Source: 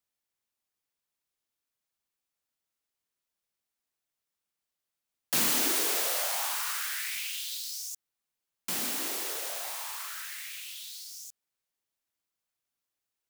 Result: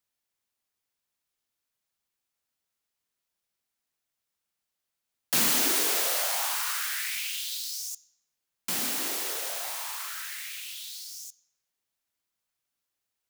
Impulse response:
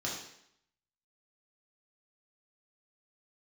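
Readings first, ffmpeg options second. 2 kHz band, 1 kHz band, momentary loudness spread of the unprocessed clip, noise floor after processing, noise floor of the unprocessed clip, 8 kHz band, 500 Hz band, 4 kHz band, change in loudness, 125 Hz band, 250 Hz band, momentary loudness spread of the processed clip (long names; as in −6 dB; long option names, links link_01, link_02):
+2.5 dB, +2.0 dB, 16 LU, −85 dBFS, below −85 dBFS, +2.5 dB, +1.5 dB, +3.0 dB, +2.5 dB, +2.5 dB, +2.0 dB, 16 LU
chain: -filter_complex "[0:a]asplit=2[link_01][link_02];[1:a]atrim=start_sample=2205[link_03];[link_02][link_03]afir=irnorm=-1:irlink=0,volume=-20dB[link_04];[link_01][link_04]amix=inputs=2:normalize=0,volume=2dB"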